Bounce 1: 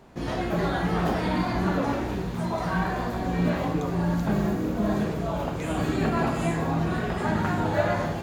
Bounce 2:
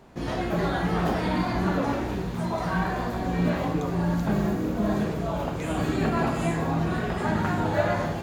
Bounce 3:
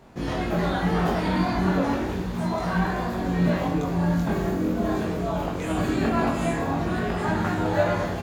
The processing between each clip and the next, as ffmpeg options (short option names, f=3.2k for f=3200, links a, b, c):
-af anull
-filter_complex "[0:a]asplit=2[a][b];[b]adelay=22,volume=-4dB[c];[a][c]amix=inputs=2:normalize=0"